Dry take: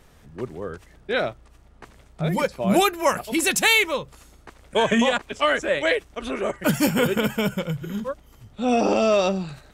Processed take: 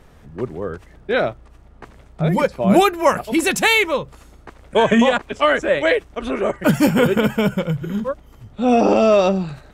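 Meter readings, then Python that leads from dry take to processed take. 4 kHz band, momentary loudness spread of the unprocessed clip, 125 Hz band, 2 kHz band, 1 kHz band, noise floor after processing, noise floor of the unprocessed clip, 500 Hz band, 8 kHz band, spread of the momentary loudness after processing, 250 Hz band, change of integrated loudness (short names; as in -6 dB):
+0.5 dB, 14 LU, +6.0 dB, +3.0 dB, +5.0 dB, -47 dBFS, -53 dBFS, +5.5 dB, -1.5 dB, 13 LU, +6.0 dB, +4.5 dB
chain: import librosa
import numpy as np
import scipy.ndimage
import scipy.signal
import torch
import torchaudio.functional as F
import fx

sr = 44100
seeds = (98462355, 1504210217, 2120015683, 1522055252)

y = fx.high_shelf(x, sr, hz=2600.0, db=-8.5)
y = y * librosa.db_to_amplitude(6.0)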